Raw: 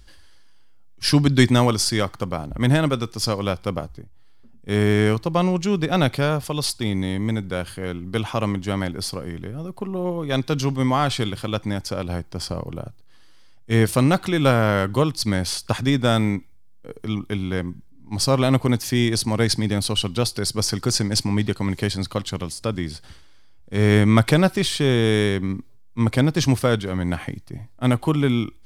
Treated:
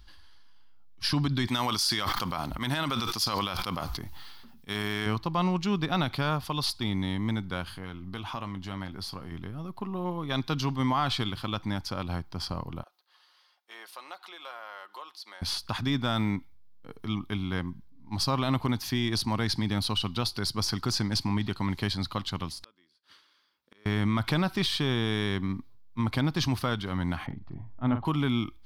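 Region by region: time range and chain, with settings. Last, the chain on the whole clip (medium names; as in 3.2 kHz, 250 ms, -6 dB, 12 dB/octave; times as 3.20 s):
1.47–5.06 s: tilt EQ +2.5 dB/octave + decay stretcher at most 27 dB/s
7.66–9.32 s: compression 2:1, threshold -32 dBFS + doubling 21 ms -12 dB
12.83–15.42 s: high-pass 500 Hz 24 dB/octave + compression 2:1, threshold -49 dBFS + comb 5.6 ms, depth 40%
22.64–23.86 s: Chebyshev high-pass 460 Hz + peaking EQ 770 Hz -13 dB 0.37 oct + inverted gate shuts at -32 dBFS, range -26 dB
27.26–28.05 s: tape spacing loss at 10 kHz 44 dB + upward compressor, threshold -31 dBFS + doubling 44 ms -8.5 dB
whole clip: graphic EQ 125/500/1000/2000/4000/8000 Hz -3/-10/+6/-3/+5/-12 dB; peak limiter -14 dBFS; trim -3.5 dB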